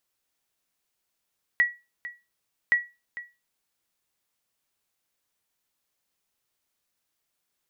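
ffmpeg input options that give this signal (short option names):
-f lavfi -i "aevalsrc='0.224*(sin(2*PI*1930*mod(t,1.12))*exp(-6.91*mod(t,1.12)/0.26)+0.158*sin(2*PI*1930*max(mod(t,1.12)-0.45,0))*exp(-6.91*max(mod(t,1.12)-0.45,0)/0.26))':d=2.24:s=44100"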